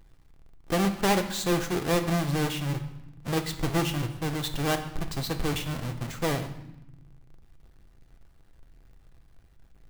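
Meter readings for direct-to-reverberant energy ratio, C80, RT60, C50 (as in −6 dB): 5.0 dB, 13.0 dB, 0.85 s, 11.0 dB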